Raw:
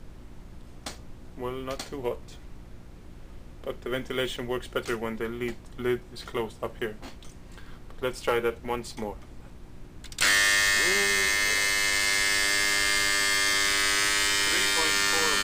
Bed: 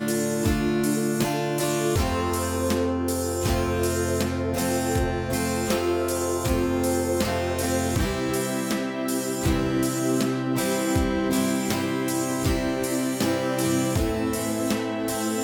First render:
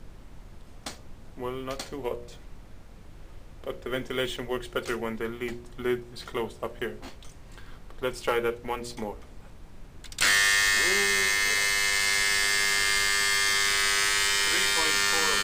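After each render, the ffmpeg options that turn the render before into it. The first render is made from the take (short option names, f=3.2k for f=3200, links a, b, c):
-af "bandreject=f=60:t=h:w=4,bandreject=f=120:t=h:w=4,bandreject=f=180:t=h:w=4,bandreject=f=240:t=h:w=4,bandreject=f=300:t=h:w=4,bandreject=f=360:t=h:w=4,bandreject=f=420:t=h:w=4,bandreject=f=480:t=h:w=4,bandreject=f=540:t=h:w=4,bandreject=f=600:t=h:w=4"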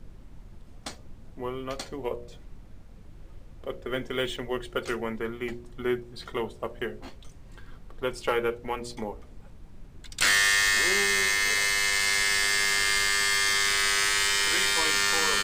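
-af "afftdn=nr=6:nf=-48"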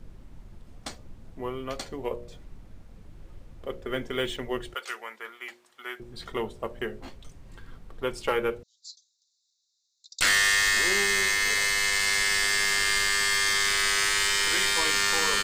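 -filter_complex "[0:a]asettb=1/sr,asplit=3[a][b][c];[a]atrim=end=4.744[d];[b]atrim=start=4.74:end=6,asetpts=PTS-STARTPTS,afade=t=in:d=0.004:c=qsin,afade=t=out:st=1.256:d=0.004:c=qsin,highpass=1k[e];[c]atrim=start=5.996[f];[d][e]acrossfade=d=0.004:c1=hsin:c2=qsin[g];[g][f]acrossfade=d=0.004:c1=qsin:c2=hsin,asettb=1/sr,asplit=3[h][i][j];[h]atrim=end=8.634[k];[i]atrim=start=8.63:end=10.21,asetpts=PTS-STARTPTS,afade=t=in:d=0.004:c=qsin,afade=t=out:st=1.576:d=0.004:c=qsin,asuperpass=centerf=5300:order=20:qfactor=1.4[l];[j]atrim=start=10.206[m];[k][l]acrossfade=d=0.004:c1=hsin:c2=qsin[n];[n][m]acrossfade=d=0.004:c1=qsin:c2=hsin"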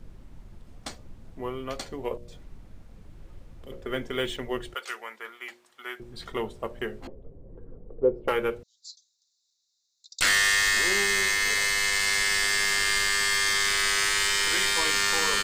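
-filter_complex "[0:a]asettb=1/sr,asplit=3[a][b][c];[a]atrim=end=2.174[d];[b]atrim=start=2.17:end=3.72,asetpts=PTS-STARTPTS,afade=t=in:d=0.004:c=qsin,afade=t=out:st=1.546:d=0.004:c=qsin,acrossover=split=310|3000[e][f][g];[f]acompressor=threshold=-51dB:ratio=6:attack=3.2:release=140:knee=2.83:detection=peak[h];[e][h][g]amix=inputs=3:normalize=0[i];[c]atrim=start=3.716[j];[d][i]acrossfade=d=0.004:c1=hsin:c2=qsin[k];[k][j]acrossfade=d=0.004:c1=qsin:c2=hsin,asettb=1/sr,asplit=3[l][m][n];[l]atrim=end=7.074[o];[m]atrim=start=7.07:end=8.28,asetpts=PTS-STARTPTS,afade=t=in:d=0.004:c=qsin,afade=t=out:st=1.206:d=0.004:c=qsin,lowpass=f=480:t=q:w=3.6[p];[n]atrim=start=8.276[q];[o][p]acrossfade=d=0.004:c1=hsin:c2=qsin[r];[r][q]acrossfade=d=0.004:c1=qsin:c2=hsin"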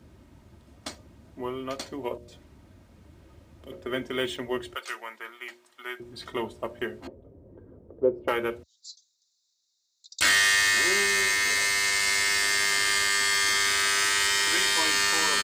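-af "highpass=f=67:w=0.5412,highpass=f=67:w=1.3066,aecho=1:1:3.2:0.41"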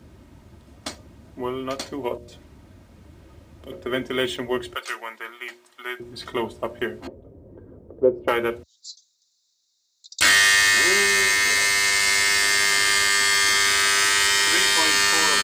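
-af "volume=5dB"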